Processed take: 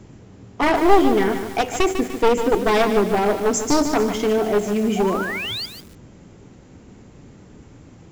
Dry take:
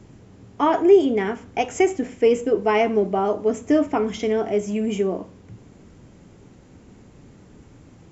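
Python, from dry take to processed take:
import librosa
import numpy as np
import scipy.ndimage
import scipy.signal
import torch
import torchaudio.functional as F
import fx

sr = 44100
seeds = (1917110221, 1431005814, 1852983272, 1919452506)

y = np.minimum(x, 2.0 * 10.0 ** (-17.0 / 20.0) - x)
y = fx.high_shelf_res(y, sr, hz=3800.0, db=11.0, q=3.0, at=(3.53, 3.94))
y = fx.spec_paint(y, sr, seeds[0], shape='rise', start_s=4.96, length_s=0.7, low_hz=690.0, high_hz=5000.0, level_db=-31.0)
y = fx.echo_crushed(y, sr, ms=149, feedback_pct=55, bits=6, wet_db=-8.0)
y = y * librosa.db_to_amplitude(3.0)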